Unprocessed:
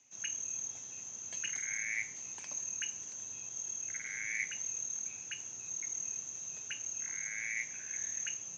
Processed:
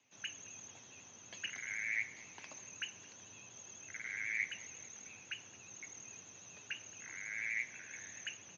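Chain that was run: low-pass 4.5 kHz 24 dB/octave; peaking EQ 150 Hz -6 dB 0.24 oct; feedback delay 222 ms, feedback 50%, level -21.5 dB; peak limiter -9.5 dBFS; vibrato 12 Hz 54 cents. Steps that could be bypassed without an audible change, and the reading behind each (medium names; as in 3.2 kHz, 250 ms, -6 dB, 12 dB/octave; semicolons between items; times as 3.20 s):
peak limiter -9.5 dBFS: peak at its input -23.5 dBFS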